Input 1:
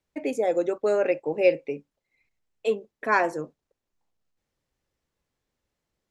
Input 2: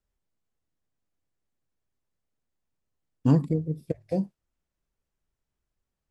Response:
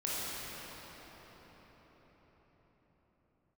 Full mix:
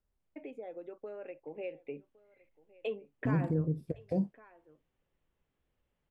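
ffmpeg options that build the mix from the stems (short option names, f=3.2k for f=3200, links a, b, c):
-filter_complex "[0:a]highshelf=f=4.1k:t=q:w=3:g=-10,acompressor=threshold=-33dB:ratio=4,adelay=200,volume=-1dB,afade=t=in:st=1.44:d=0.75:silence=0.375837,asplit=2[a][b];[b]volume=-22dB[c];[1:a]alimiter=limit=-23dB:level=0:latency=1:release=35,volume=0.5dB,asplit=2[d][e];[e]apad=whole_len=278209[f];[a][f]sidechaincompress=threshold=-30dB:ratio=8:attack=16:release=107[g];[c]aecho=0:1:1112:1[h];[g][d][h]amix=inputs=3:normalize=0,highshelf=f=2.2k:g=-10.5"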